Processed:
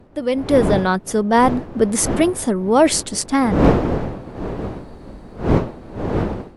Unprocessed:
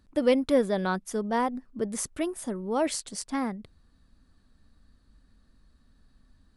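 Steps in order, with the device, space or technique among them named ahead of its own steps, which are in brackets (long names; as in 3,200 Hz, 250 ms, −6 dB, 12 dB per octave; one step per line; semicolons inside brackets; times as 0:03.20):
smartphone video outdoors (wind on the microphone 420 Hz; automatic gain control gain up to 16.5 dB; AAC 96 kbit/s 44,100 Hz)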